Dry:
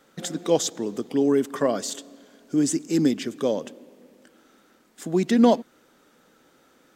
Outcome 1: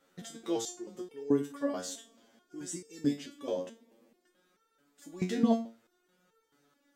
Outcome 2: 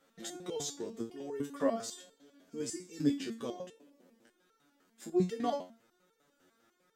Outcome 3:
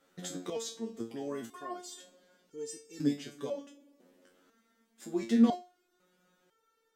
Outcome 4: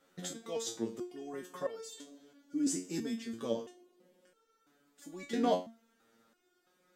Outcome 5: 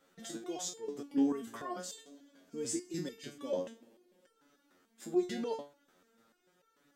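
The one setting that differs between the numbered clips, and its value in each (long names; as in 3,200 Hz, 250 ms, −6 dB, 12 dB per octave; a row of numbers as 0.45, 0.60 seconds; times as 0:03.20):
step-sequenced resonator, speed: 4.6, 10, 2, 3, 6.8 Hertz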